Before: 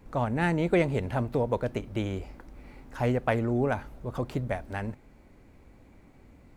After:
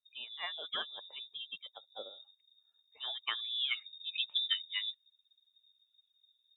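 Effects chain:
spectral dynamics exaggerated over time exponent 2
voice inversion scrambler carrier 3,700 Hz
band-pass filter sweep 570 Hz → 2,400 Hz, 0:02.91–0:04.05
level +8.5 dB

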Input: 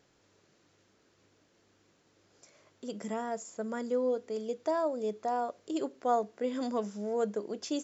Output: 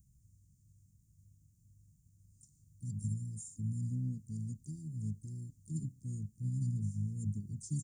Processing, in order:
pitch-shifted copies added −12 semitones −9 dB, −5 semitones −12 dB, +4 semitones −11 dB
inverse Chebyshev band-stop filter 600–2,500 Hz, stop band 80 dB
level +12.5 dB

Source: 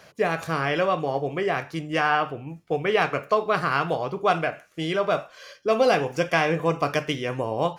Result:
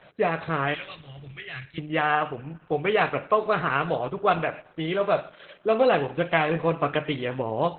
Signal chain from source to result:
0:00.74–0:01.78: drawn EQ curve 130 Hz 0 dB, 180 Hz −22 dB, 980 Hz −23 dB, 1,700 Hz −5 dB, 5,100 Hz +4 dB, 9,900 Hz +7 dB
convolution reverb, pre-delay 96 ms, DRR 19.5 dB
Opus 8 kbit/s 48,000 Hz

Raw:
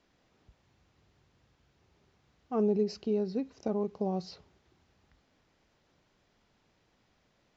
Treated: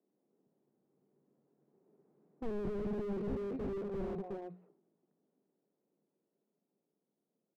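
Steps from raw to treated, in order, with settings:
source passing by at 0:02.51, 17 m/s, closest 14 metres
Butterworth low-pass 2,700 Hz
low-pass that shuts in the quiet parts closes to 460 Hz, open at −29 dBFS
Butterworth high-pass 170 Hz 36 dB per octave
parametric band 400 Hz +5 dB 0.34 octaves
mains-hum notches 60/120/180/240 Hz
on a send: multi-tap delay 49/223/238/345 ms −14/−11.5/−18/−8 dB
on the sum: slew-rate limiting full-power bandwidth 3.4 Hz
level +3.5 dB

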